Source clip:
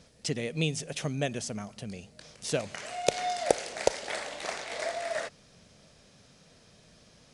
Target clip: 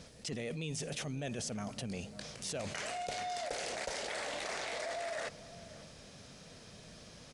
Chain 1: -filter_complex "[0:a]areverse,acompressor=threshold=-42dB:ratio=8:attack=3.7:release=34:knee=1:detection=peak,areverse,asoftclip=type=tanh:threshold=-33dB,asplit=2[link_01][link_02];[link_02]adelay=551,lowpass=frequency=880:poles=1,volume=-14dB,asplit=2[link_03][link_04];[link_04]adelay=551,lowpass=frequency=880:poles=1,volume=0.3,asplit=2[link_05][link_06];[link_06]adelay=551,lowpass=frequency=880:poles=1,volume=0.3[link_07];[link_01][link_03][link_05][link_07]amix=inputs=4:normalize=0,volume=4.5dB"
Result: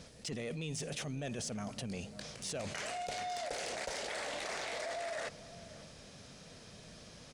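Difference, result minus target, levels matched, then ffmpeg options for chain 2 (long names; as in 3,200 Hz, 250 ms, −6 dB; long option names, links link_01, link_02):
soft clipping: distortion +16 dB
-filter_complex "[0:a]areverse,acompressor=threshold=-42dB:ratio=8:attack=3.7:release=34:knee=1:detection=peak,areverse,asoftclip=type=tanh:threshold=-24dB,asplit=2[link_01][link_02];[link_02]adelay=551,lowpass=frequency=880:poles=1,volume=-14dB,asplit=2[link_03][link_04];[link_04]adelay=551,lowpass=frequency=880:poles=1,volume=0.3,asplit=2[link_05][link_06];[link_06]adelay=551,lowpass=frequency=880:poles=1,volume=0.3[link_07];[link_01][link_03][link_05][link_07]amix=inputs=4:normalize=0,volume=4.5dB"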